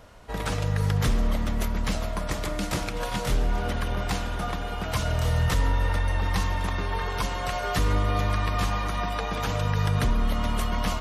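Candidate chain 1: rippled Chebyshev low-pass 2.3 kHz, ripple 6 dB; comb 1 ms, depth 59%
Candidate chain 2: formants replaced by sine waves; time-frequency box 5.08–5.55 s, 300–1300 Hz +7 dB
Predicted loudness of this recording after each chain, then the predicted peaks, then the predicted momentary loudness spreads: -30.0 LUFS, -24.0 LUFS; -16.5 dBFS, -10.0 dBFS; 6 LU, 7 LU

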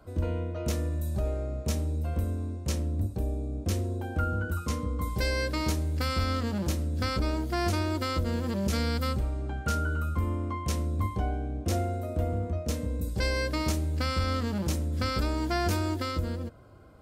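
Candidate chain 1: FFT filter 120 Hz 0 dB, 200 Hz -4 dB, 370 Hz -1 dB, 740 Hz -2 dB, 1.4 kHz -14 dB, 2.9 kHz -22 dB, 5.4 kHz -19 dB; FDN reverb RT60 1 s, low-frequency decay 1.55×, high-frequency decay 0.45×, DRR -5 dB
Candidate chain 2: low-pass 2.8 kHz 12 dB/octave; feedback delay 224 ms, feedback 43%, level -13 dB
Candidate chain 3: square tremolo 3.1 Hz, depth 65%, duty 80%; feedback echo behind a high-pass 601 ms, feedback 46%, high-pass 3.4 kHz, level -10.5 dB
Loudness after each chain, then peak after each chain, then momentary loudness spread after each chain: -22.5 LUFS, -31.0 LUFS, -31.0 LUFS; -8.0 dBFS, -17.0 dBFS, -17.0 dBFS; 6 LU, 4 LU, 4 LU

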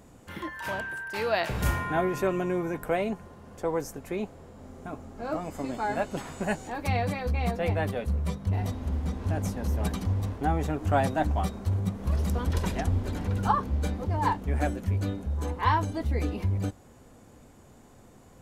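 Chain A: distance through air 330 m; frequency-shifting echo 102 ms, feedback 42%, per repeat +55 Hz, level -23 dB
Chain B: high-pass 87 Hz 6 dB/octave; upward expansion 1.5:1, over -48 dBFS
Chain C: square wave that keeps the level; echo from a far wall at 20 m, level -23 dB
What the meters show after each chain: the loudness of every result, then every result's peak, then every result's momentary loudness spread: -30.5 LUFS, -34.0 LUFS, -25.0 LUFS; -12.0 dBFS, -12.0 dBFS, -11.0 dBFS; 8 LU, 12 LU, 8 LU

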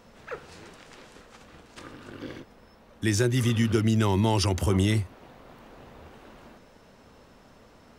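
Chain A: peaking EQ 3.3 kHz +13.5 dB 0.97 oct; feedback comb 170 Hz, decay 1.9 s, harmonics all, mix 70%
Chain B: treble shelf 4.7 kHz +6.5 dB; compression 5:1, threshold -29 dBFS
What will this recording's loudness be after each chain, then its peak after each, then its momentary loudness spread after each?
-32.5 LUFS, -35.0 LUFS; -16.5 dBFS, -18.5 dBFS; 20 LU, 22 LU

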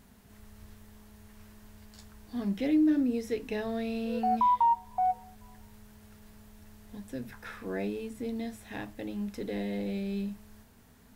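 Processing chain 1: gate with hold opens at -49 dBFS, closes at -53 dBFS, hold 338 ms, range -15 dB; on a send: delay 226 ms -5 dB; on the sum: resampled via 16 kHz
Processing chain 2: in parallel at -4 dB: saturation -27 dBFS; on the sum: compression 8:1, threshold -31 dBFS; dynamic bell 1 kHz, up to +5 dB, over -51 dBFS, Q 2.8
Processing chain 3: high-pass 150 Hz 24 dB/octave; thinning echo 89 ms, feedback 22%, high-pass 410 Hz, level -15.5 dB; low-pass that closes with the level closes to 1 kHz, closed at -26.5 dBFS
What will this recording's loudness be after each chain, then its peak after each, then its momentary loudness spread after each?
-30.5 LUFS, -34.5 LUFS, -32.0 LUFS; -14.5 dBFS, -20.5 dBFS, -18.5 dBFS; 16 LU, 19 LU, 16 LU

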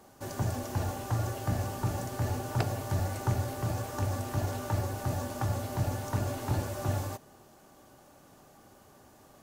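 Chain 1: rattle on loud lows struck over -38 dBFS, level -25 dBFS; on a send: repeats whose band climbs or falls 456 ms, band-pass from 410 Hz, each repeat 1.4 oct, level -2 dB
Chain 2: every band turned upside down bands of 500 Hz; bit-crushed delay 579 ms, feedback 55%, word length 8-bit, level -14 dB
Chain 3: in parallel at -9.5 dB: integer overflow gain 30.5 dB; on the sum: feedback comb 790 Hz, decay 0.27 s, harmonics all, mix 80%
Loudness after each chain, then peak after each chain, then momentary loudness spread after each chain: -32.0 LUFS, -32.5 LUFS, -44.0 LUFS; -12.5 dBFS, -12.5 dBFS, -26.5 dBFS; 13 LU, 15 LU, 2 LU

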